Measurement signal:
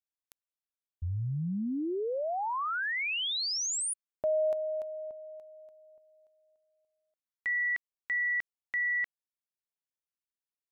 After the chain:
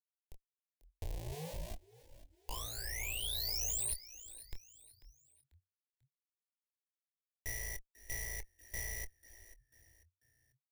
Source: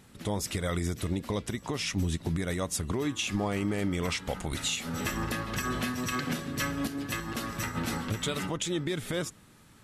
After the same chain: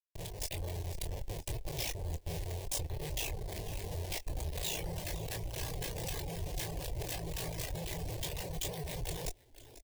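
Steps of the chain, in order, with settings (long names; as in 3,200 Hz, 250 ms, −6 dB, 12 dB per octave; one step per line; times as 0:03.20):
wavefolder on the positive side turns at −24.5 dBFS
amplitude modulation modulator 57 Hz, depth 65%
elliptic band-stop filter 180–1,300 Hz, stop band 40 dB
parametric band 350 Hz +5.5 dB 2.8 octaves
downward compressor 10 to 1, threshold −43 dBFS
comparator with hysteresis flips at −47 dBFS
high-shelf EQ 9,100 Hz +5 dB
phaser with its sweep stopped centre 550 Hz, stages 4
echo with shifted repeats 492 ms, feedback 36%, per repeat −47 Hz, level −15.5 dB
automatic gain control gain up to 4 dB
double-tracking delay 25 ms −7 dB
reverb reduction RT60 0.79 s
level +9.5 dB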